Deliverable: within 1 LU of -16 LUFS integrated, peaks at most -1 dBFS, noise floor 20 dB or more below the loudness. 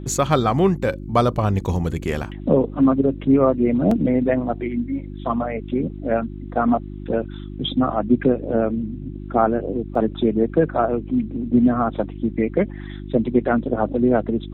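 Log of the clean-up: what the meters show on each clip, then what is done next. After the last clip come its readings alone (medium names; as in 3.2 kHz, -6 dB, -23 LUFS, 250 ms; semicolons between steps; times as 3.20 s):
dropouts 2; longest dropout 3.6 ms; hum 50 Hz; highest harmonic 350 Hz; hum level -31 dBFS; loudness -21.0 LUFS; peak level -4.5 dBFS; loudness target -16.0 LUFS
-> interpolate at 3.91/9.95 s, 3.6 ms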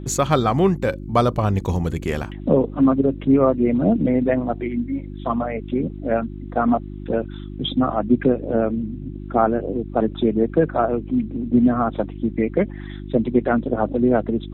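dropouts 0; hum 50 Hz; highest harmonic 350 Hz; hum level -31 dBFS
-> de-hum 50 Hz, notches 7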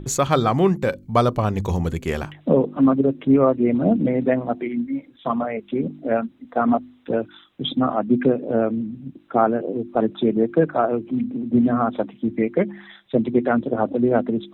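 hum not found; loudness -21.5 LUFS; peak level -5.0 dBFS; loudness target -16.0 LUFS
-> trim +5.5 dB; peak limiter -1 dBFS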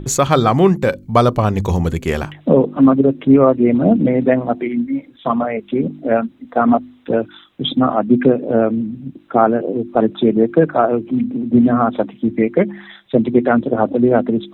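loudness -16.0 LUFS; peak level -1.0 dBFS; noise floor -46 dBFS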